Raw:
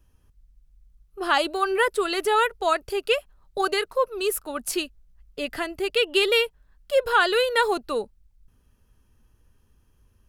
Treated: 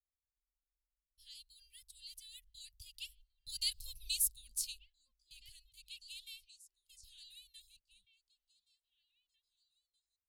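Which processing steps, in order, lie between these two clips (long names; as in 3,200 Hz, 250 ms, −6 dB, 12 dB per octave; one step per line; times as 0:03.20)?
source passing by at 0:03.93, 10 m/s, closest 1.6 metres
noise gate −55 dBFS, range −19 dB
inverse Chebyshev band-stop filter 290–1,400 Hz, stop band 60 dB
on a send: echo through a band-pass that steps 599 ms, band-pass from 320 Hz, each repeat 1.4 octaves, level −11 dB
on the sum: level +5 dB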